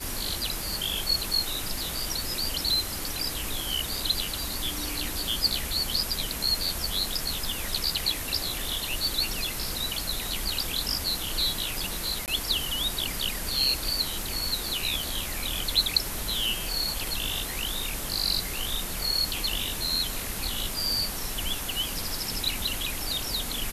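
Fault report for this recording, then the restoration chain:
12.26–12.28 s: dropout 18 ms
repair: interpolate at 12.26 s, 18 ms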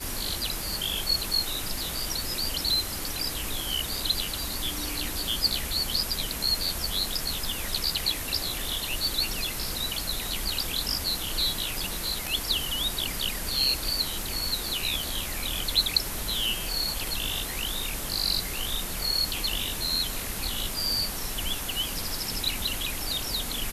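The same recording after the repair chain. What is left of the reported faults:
nothing left

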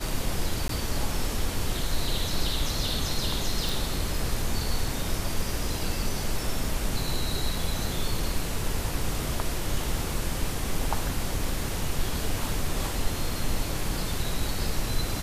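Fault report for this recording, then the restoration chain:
0.68–0.69 s: dropout 13 ms
3.69 s: pop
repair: de-click; interpolate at 0.68 s, 13 ms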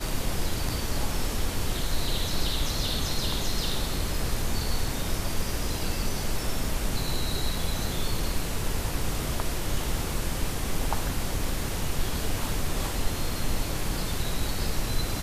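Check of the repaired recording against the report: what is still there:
nothing left

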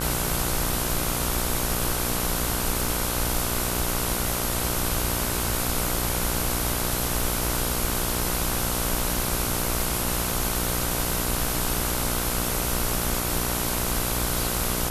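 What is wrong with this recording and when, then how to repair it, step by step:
buzz 60 Hz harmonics 26 -30 dBFS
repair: de-hum 60 Hz, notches 26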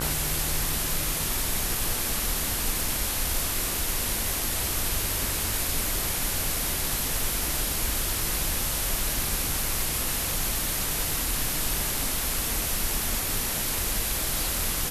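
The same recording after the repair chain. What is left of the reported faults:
nothing left

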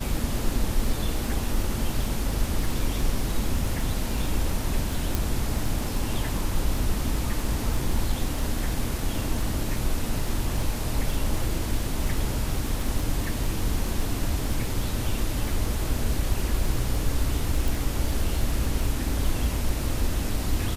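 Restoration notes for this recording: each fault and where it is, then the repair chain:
crackle 21 per s -28 dBFS
5.15 s: pop
17.68 s: pop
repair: de-click

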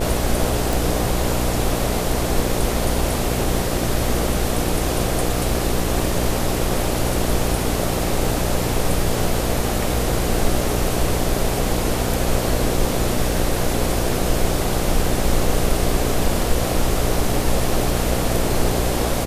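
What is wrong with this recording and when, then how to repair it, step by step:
buzz 60 Hz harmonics 13 -24 dBFS
0.73 s: pop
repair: de-click; de-hum 60 Hz, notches 13

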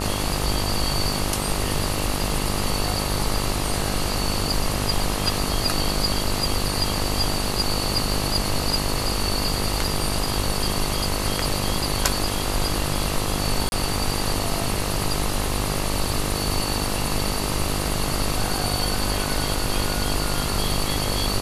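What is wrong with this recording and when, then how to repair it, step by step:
buzz 50 Hz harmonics 26 -28 dBFS
13.69–13.72 s: dropout 31 ms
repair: de-hum 50 Hz, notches 26; interpolate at 13.69 s, 31 ms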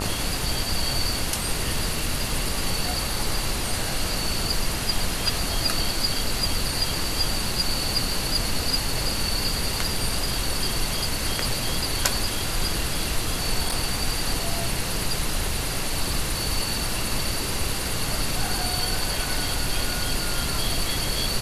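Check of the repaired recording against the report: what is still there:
nothing left

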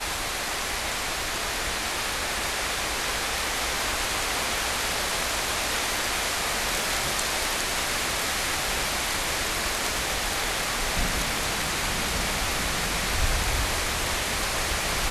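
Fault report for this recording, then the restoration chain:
crackle 43 per s -35 dBFS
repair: de-click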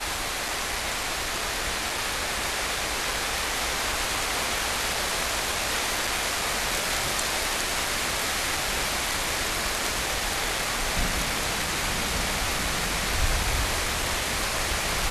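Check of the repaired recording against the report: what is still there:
nothing left

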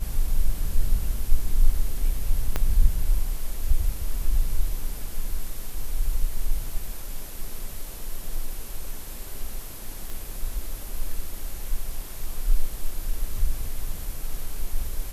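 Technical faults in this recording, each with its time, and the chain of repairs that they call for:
2.56 s: pop -10 dBFS
10.10 s: pop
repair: de-click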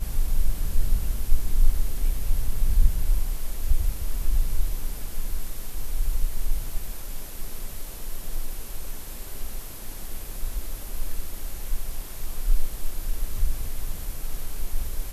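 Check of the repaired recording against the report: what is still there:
2.56 s: pop

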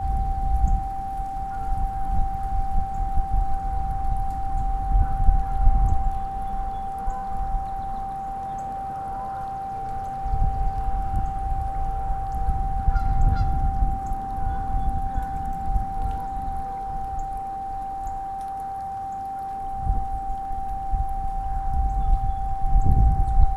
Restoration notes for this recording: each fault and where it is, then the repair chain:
whine 780 Hz -28 dBFS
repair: band-stop 780 Hz, Q 30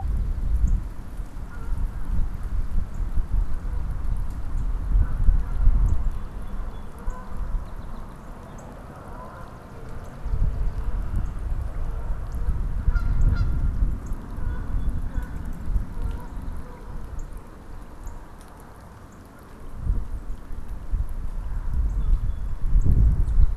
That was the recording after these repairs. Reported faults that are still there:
nothing left

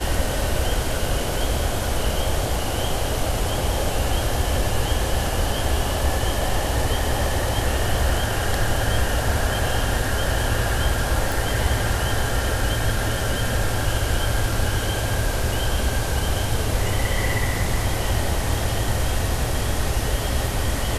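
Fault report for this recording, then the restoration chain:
11.32 s: pop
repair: de-click

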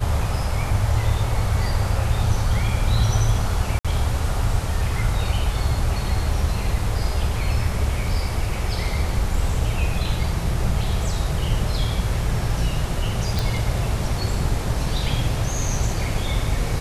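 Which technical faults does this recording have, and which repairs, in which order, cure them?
3.79–3.85 s: dropout 56 ms
13.39 s: pop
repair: de-click; interpolate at 3.79 s, 56 ms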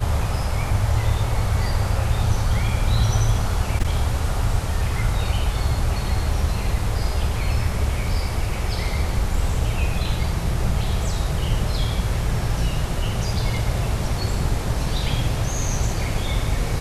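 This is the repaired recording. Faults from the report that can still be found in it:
nothing left

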